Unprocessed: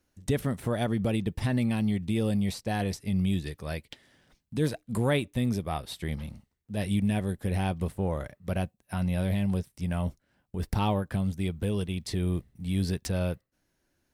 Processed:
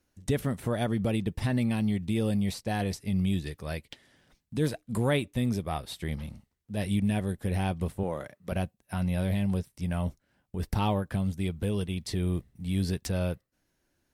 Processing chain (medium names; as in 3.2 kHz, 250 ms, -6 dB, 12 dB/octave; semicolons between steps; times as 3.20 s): 8.03–8.52 s: Bessel high-pass 190 Hz, order 2; MP3 80 kbps 44.1 kHz